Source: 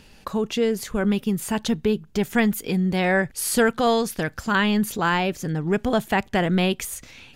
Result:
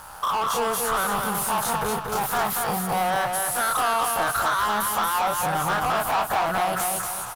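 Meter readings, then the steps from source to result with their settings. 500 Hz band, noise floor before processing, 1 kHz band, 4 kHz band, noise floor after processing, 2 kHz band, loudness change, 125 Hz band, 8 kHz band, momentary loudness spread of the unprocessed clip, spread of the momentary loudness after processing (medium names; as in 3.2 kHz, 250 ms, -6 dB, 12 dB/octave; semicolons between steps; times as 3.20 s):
-5.0 dB, -51 dBFS, +6.5 dB, -1.0 dB, -34 dBFS, -1.5 dB, -0.5 dB, -8.5 dB, +4.5 dB, 7 LU, 3 LU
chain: every event in the spectrogram widened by 60 ms; FFT filter 110 Hz 0 dB, 220 Hz -20 dB, 400 Hz -20 dB, 730 Hz +2 dB, 1.3 kHz +7 dB, 2.3 kHz -28 dB, 7.1 kHz -10 dB, 10 kHz +4 dB; peak limiter -16 dBFS, peak gain reduction 11.5 dB; compression, threshold -28 dBFS, peak gain reduction 7.5 dB; overdrive pedal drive 26 dB, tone 6.3 kHz, clips at -16.5 dBFS; crossover distortion -43.5 dBFS; feedback delay 234 ms, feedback 38%, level -4 dB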